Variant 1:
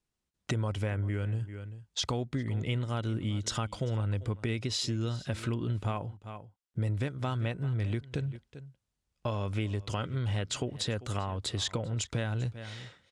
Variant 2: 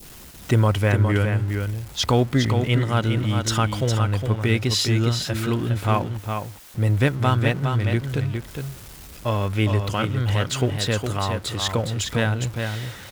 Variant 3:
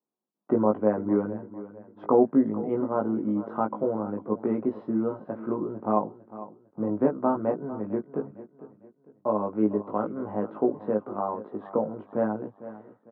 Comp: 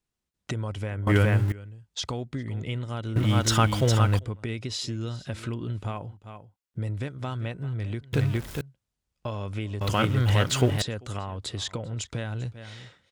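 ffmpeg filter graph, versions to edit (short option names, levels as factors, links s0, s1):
-filter_complex "[1:a]asplit=4[s0][s1][s2][s3];[0:a]asplit=5[s4][s5][s6][s7][s8];[s4]atrim=end=1.072[s9];[s0]atrim=start=1.068:end=1.522[s10];[s5]atrim=start=1.518:end=3.162[s11];[s1]atrim=start=3.158:end=4.192[s12];[s6]atrim=start=4.188:end=8.132[s13];[s2]atrim=start=8.128:end=8.612[s14];[s7]atrim=start=8.608:end=9.812[s15];[s3]atrim=start=9.808:end=10.822[s16];[s8]atrim=start=10.818[s17];[s9][s10]acrossfade=d=0.004:c1=hsin:c2=hsin[s18];[s18][s11]acrossfade=d=0.004:c1=hsin:c2=hsin[s19];[s19][s12]acrossfade=d=0.004:c1=hsin:c2=hsin[s20];[s20][s13]acrossfade=d=0.004:c1=hsin:c2=hsin[s21];[s21][s14]acrossfade=d=0.004:c1=hsin:c2=hsin[s22];[s22][s15]acrossfade=d=0.004:c1=hsin:c2=hsin[s23];[s23][s16]acrossfade=d=0.004:c1=hsin:c2=hsin[s24];[s24][s17]acrossfade=d=0.004:c1=hsin:c2=hsin"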